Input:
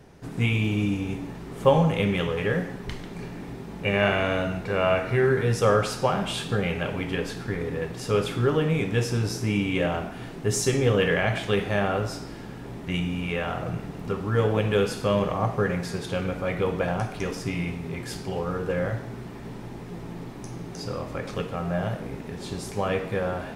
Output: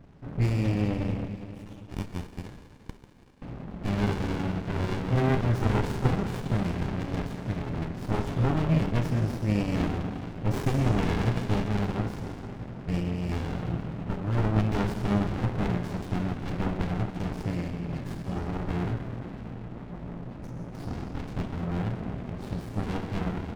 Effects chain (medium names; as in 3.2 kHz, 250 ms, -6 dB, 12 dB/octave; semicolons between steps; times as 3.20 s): spectral gate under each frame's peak -30 dB strong; 1.28–3.42 s: inverse Chebyshev high-pass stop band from 460 Hz, stop band 70 dB; early reflections 38 ms -16 dB, 50 ms -15 dB; algorithmic reverb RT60 3.2 s, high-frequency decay 0.65×, pre-delay 75 ms, DRR 8.5 dB; sliding maximum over 65 samples